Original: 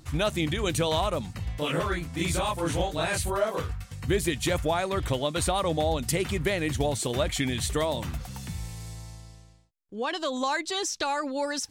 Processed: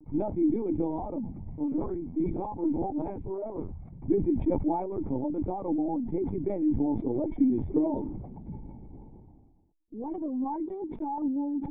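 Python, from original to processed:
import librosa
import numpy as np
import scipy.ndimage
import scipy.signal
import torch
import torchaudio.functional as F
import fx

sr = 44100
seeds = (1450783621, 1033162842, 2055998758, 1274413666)

y = fx.formant_cascade(x, sr, vowel='u')
y = fx.lpc_vocoder(y, sr, seeds[0], excitation='pitch_kept', order=16)
y = fx.peak_eq(y, sr, hz=420.0, db=5.0, octaves=1.1, at=(6.87, 9.2))
y = fx.sustainer(y, sr, db_per_s=59.0)
y = y * librosa.db_to_amplitude(7.0)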